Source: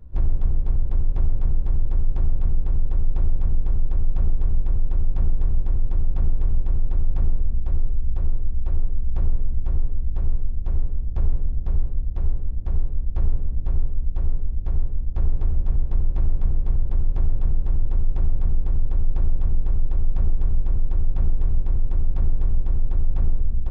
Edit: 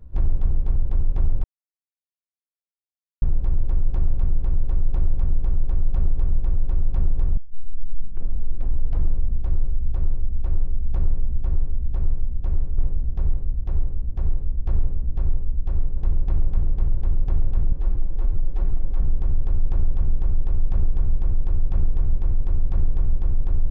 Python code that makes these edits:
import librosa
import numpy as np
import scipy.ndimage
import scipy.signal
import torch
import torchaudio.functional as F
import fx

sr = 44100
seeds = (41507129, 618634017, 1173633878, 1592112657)

y = fx.edit(x, sr, fx.insert_silence(at_s=1.44, length_s=1.78),
    fx.tape_start(start_s=5.59, length_s=1.79),
    fx.cut(start_s=11.0, length_s=0.27),
    fx.cut(start_s=14.45, length_s=1.39),
    fx.stretch_span(start_s=17.6, length_s=0.87, factor=1.5), tone=tone)